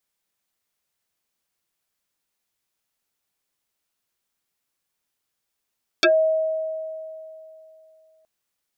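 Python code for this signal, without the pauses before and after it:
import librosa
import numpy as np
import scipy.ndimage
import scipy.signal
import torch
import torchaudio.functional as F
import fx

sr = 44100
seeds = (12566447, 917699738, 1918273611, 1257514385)

y = fx.fm2(sr, length_s=2.22, level_db=-12, carrier_hz=636.0, ratio=1.55, index=6.0, index_s=0.12, decay_s=2.93, shape='exponential')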